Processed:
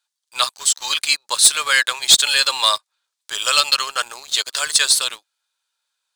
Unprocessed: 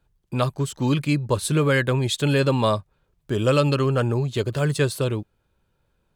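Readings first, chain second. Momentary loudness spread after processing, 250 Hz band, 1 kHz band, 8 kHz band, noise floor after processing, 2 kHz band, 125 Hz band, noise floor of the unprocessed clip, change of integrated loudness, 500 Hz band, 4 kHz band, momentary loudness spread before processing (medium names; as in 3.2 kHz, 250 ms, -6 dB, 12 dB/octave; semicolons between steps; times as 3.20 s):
11 LU, under -25 dB, +4.5 dB, +18.5 dB, -81 dBFS, +8.5 dB, under -30 dB, -71 dBFS, +6.5 dB, -11.5 dB, +16.5 dB, 6 LU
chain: Bessel high-pass 1.4 kHz, order 4; high-order bell 5.8 kHz +10 dB; waveshaping leveller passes 2; trim +3 dB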